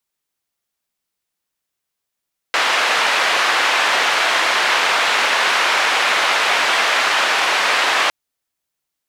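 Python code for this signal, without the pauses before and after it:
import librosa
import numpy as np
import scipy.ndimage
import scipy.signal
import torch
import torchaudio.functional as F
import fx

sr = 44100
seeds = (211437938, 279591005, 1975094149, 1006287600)

y = fx.band_noise(sr, seeds[0], length_s=5.56, low_hz=690.0, high_hz=2400.0, level_db=-16.5)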